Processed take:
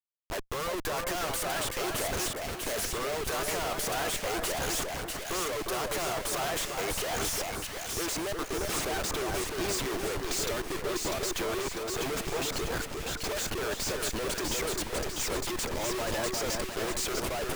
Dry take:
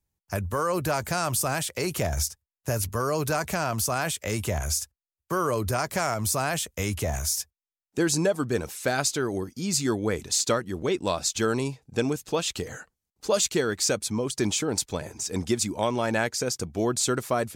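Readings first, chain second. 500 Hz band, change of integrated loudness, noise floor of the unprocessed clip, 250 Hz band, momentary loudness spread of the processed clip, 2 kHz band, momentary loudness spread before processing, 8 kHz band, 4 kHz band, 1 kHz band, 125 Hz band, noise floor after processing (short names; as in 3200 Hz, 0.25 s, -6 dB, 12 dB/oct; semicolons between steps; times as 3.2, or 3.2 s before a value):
-5.0 dB, -4.5 dB, under -85 dBFS, -8.0 dB, 3 LU, -2.0 dB, 6 LU, -5.0 dB, -1.5 dB, -4.0 dB, -10.5 dB, -39 dBFS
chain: elliptic high-pass 360 Hz, stop band 50 dB; reverb removal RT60 1.1 s; Schmitt trigger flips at -40 dBFS; on a send: split-band echo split 1700 Hz, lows 0.355 s, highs 0.647 s, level -3 dB; on the sum: gain -2.5 dB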